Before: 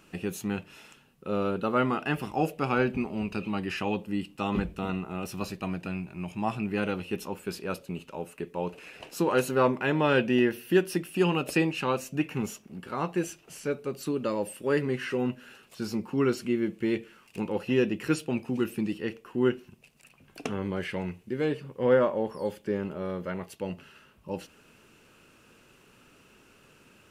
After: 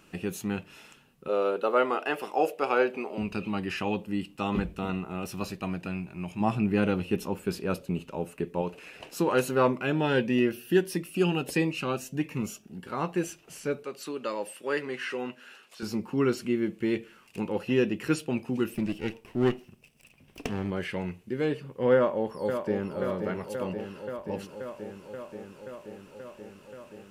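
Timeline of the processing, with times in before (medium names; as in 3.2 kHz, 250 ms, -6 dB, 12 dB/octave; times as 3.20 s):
1.28–3.18 s: resonant high-pass 470 Hz, resonance Q 1.7
6.40–8.62 s: bass shelf 470 Hz +6.5 dB
9.73–12.87 s: Shepard-style phaser rising 1.5 Hz
13.83–15.83 s: frequency weighting A
18.74–20.71 s: comb filter that takes the minimum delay 0.37 ms
21.95–22.95 s: echo throw 530 ms, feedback 80%, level -7 dB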